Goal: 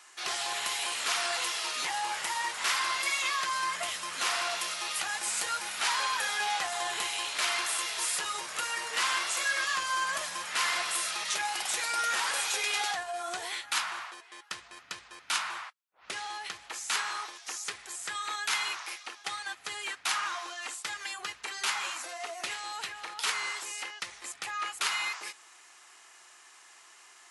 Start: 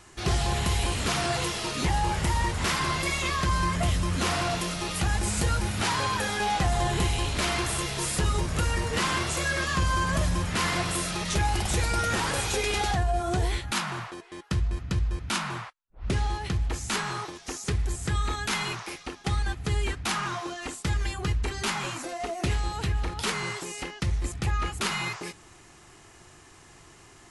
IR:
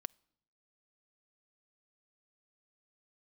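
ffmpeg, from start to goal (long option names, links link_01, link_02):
-af "highpass=1000"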